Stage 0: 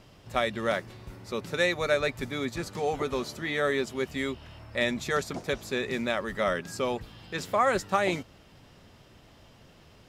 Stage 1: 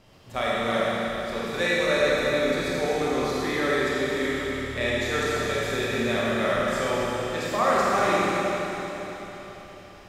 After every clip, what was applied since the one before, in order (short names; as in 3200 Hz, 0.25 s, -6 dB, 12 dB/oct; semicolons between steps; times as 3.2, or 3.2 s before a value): notches 50/100/150 Hz; Schroeder reverb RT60 4 s, combs from 27 ms, DRR -7.5 dB; gain -3 dB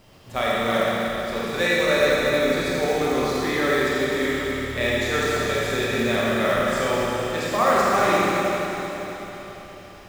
companded quantiser 6-bit; gain +3 dB